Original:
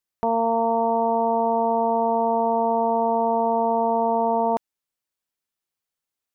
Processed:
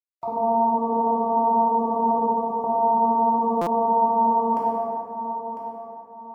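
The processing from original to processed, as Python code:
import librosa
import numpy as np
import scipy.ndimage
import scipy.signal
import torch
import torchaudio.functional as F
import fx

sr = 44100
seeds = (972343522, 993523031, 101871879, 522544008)

y = fx.spec_dropout(x, sr, seeds[0], share_pct=33)
y = scipy.signal.sosfilt(scipy.signal.butter(4, 61.0, 'highpass', fs=sr, output='sos'), y)
y = fx.hum_notches(y, sr, base_hz=60, count=8)
y = fx.over_compress(y, sr, threshold_db=-29.0, ratio=-0.5, at=(2.19, 2.64))
y = fx.quant_dither(y, sr, seeds[1], bits=12, dither='none')
y = fx.air_absorb(y, sr, metres=180.0, at=(0.69, 1.36))
y = fx.echo_feedback(y, sr, ms=1001, feedback_pct=32, wet_db=-11.5)
y = fx.rev_plate(y, sr, seeds[2], rt60_s=2.8, hf_ratio=0.45, predelay_ms=0, drr_db=-6.5)
y = fx.buffer_glitch(y, sr, at_s=(3.61,), block=256, repeats=9)
y = y * 10.0 ** (-4.5 / 20.0)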